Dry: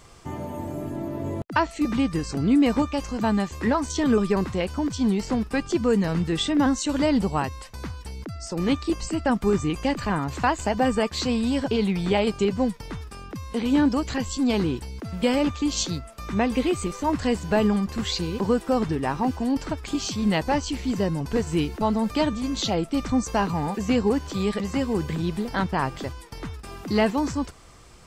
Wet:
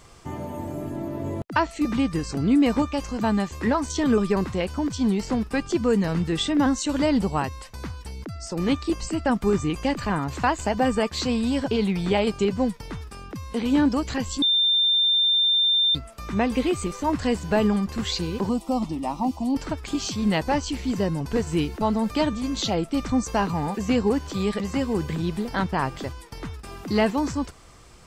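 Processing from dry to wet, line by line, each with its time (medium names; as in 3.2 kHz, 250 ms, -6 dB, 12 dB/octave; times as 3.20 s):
14.42–15.95 s: bleep 3.59 kHz -17 dBFS
18.49–19.55 s: static phaser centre 430 Hz, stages 6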